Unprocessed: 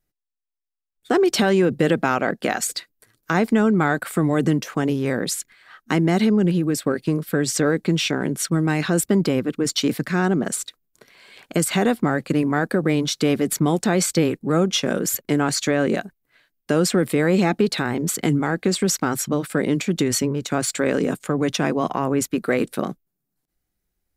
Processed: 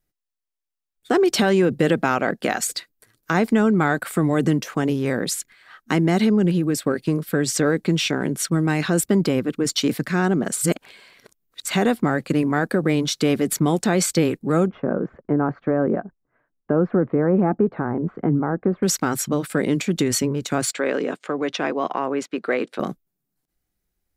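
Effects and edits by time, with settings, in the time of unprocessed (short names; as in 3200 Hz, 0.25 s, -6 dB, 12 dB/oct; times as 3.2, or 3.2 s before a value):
10.61–11.67 reverse
14.67–18.83 LPF 1300 Hz 24 dB/oct
20.72–22.8 BPF 330–4000 Hz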